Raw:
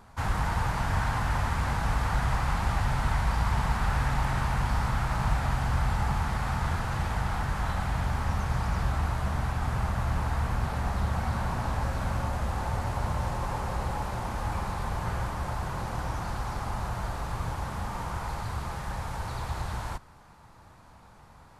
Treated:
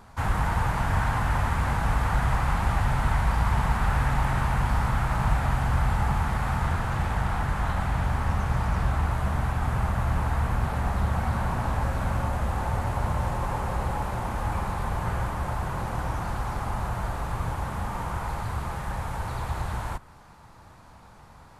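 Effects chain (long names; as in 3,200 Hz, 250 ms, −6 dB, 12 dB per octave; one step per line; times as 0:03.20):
dynamic equaliser 5,000 Hz, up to −6 dB, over −58 dBFS, Q 1.2
0:06.66–0:09.11: highs frequency-modulated by the lows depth 0.21 ms
level +3 dB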